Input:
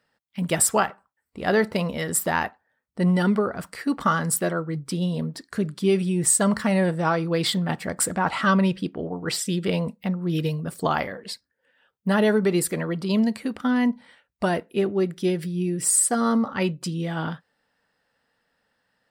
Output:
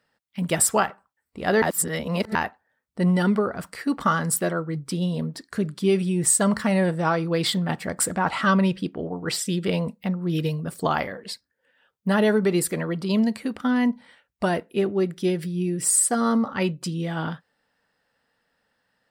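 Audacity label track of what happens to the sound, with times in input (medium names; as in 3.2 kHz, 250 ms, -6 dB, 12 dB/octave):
1.620000	2.350000	reverse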